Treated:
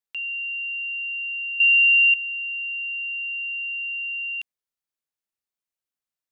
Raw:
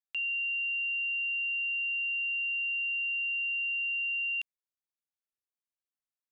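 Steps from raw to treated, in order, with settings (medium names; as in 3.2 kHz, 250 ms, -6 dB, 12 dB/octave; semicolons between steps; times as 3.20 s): 1.60–2.14 s: peaking EQ 2.5 kHz +14.5 dB 1.5 oct; trim +2.5 dB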